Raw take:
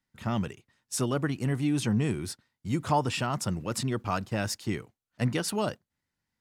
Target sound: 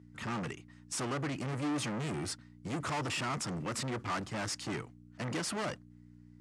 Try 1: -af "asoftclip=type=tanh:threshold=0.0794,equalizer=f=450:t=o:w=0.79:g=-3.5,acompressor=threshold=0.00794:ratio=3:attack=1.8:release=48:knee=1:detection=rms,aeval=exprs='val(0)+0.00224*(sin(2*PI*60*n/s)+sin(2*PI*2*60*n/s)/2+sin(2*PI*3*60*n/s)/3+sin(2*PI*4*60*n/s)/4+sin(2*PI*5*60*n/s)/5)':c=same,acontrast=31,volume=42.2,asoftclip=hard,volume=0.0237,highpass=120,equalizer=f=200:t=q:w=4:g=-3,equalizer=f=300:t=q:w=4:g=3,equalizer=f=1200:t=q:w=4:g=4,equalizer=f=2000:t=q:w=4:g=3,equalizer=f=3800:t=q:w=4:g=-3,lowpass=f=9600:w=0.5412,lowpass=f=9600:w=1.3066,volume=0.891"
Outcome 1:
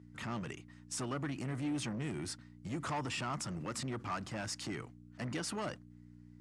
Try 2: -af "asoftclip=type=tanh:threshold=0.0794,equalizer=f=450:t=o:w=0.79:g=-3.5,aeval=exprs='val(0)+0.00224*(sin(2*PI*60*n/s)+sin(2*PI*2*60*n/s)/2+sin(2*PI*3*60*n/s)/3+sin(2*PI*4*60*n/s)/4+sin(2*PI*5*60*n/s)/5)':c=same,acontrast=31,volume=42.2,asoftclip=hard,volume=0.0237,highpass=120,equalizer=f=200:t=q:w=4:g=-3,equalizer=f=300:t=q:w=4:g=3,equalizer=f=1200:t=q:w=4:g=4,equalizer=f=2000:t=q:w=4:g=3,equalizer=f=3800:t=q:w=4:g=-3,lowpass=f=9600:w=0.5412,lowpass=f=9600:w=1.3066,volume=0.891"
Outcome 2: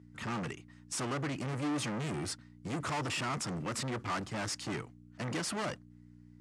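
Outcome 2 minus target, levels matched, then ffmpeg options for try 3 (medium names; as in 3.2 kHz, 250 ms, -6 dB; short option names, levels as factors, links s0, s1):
saturation: distortion -8 dB
-af "asoftclip=type=tanh:threshold=0.0282,equalizer=f=450:t=o:w=0.79:g=-3.5,aeval=exprs='val(0)+0.00224*(sin(2*PI*60*n/s)+sin(2*PI*2*60*n/s)/2+sin(2*PI*3*60*n/s)/3+sin(2*PI*4*60*n/s)/4+sin(2*PI*5*60*n/s)/5)':c=same,acontrast=31,volume=42.2,asoftclip=hard,volume=0.0237,highpass=120,equalizer=f=200:t=q:w=4:g=-3,equalizer=f=300:t=q:w=4:g=3,equalizer=f=1200:t=q:w=4:g=4,equalizer=f=2000:t=q:w=4:g=3,equalizer=f=3800:t=q:w=4:g=-3,lowpass=f=9600:w=0.5412,lowpass=f=9600:w=1.3066,volume=0.891"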